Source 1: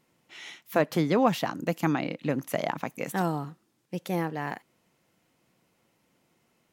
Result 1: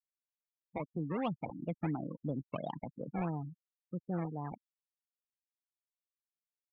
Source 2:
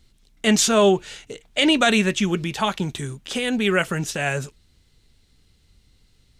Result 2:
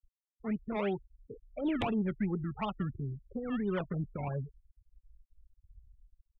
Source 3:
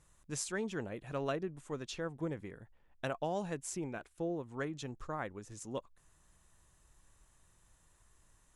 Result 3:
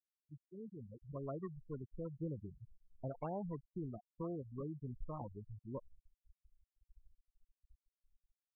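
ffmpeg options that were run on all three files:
-filter_complex "[0:a]dynaudnorm=f=450:g=5:m=10.5dB,lowpass=f=1.2k:w=0.5412,lowpass=f=1.2k:w=1.3066,equalizer=f=510:w=0.31:g=-11,asplit=2[a][b];[b]acompressor=threshold=-35dB:ratio=5,volume=-2.5dB[c];[a][c]amix=inputs=2:normalize=0,acrusher=samples=20:mix=1:aa=0.000001:lfo=1:lforange=20:lforate=2.9,aeval=exprs='val(0)+0.00158*(sin(2*PI*50*n/s)+sin(2*PI*2*50*n/s)/2+sin(2*PI*3*50*n/s)/3+sin(2*PI*4*50*n/s)/4+sin(2*PI*5*50*n/s)/5)':c=same,aresample=8000,aeval=exprs='(mod(4.22*val(0)+1,2)-1)/4.22':c=same,aresample=44100,afftfilt=real='re*gte(hypot(re,im),0.0501)':imag='im*gte(hypot(re,im),0.0501)':win_size=1024:overlap=0.75,asoftclip=type=tanh:threshold=-11dB,volume=-9dB"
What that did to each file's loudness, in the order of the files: -10.5, -15.0, -6.5 LU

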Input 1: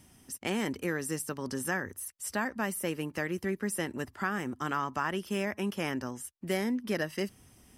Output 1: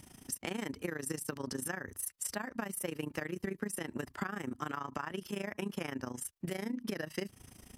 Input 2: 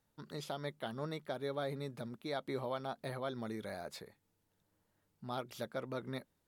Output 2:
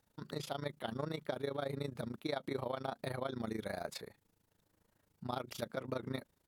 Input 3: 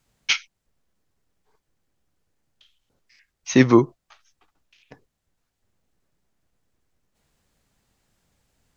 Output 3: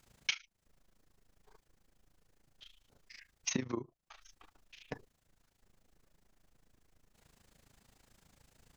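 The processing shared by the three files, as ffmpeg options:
-af "acompressor=threshold=-37dB:ratio=20,tremolo=f=27:d=0.857,volume=7dB"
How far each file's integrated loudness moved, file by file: -5.5, +0.5, -20.0 LU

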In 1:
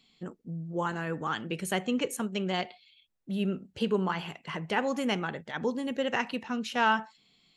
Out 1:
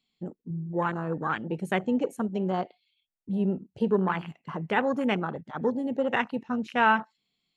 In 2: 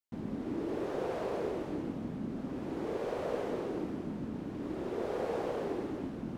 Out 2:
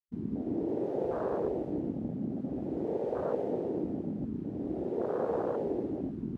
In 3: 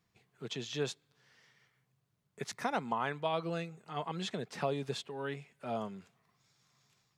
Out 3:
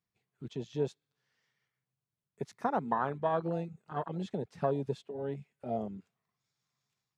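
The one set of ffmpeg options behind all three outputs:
-af "afwtdn=0.02,volume=3.5dB"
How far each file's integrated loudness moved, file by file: +3.0, +3.0, +2.0 LU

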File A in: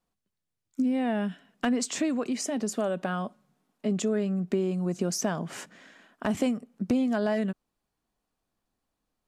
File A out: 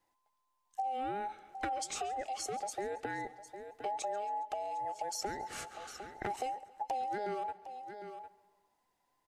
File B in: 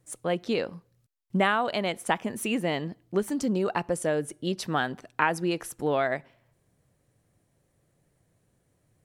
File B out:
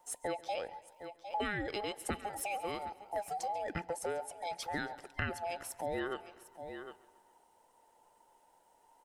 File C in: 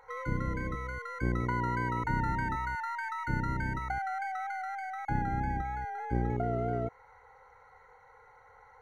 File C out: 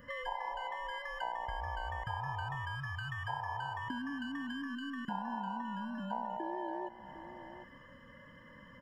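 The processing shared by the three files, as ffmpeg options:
-filter_complex "[0:a]afftfilt=real='real(if(between(b,1,1008),(2*floor((b-1)/48)+1)*48-b,b),0)':imag='imag(if(between(b,1,1008),(2*floor((b-1)/48)+1)*48-b,b),0)*if(between(b,1,1008),-1,1)':win_size=2048:overlap=0.75,asplit=2[a][b];[b]aecho=0:1:755:0.0891[c];[a][c]amix=inputs=2:normalize=0,acompressor=threshold=-42dB:ratio=2.5,adynamicequalizer=threshold=0.00112:dfrequency=680:dqfactor=7:tfrequency=680:tqfactor=7:attack=5:release=100:ratio=0.375:range=2.5:mode=cutabove:tftype=bell,asplit=2[d][e];[e]aecho=0:1:137|274|411|548:0.0944|0.0538|0.0307|0.0175[f];[d][f]amix=inputs=2:normalize=0,volume=2dB"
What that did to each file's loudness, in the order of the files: -10.0, -10.5, -6.0 LU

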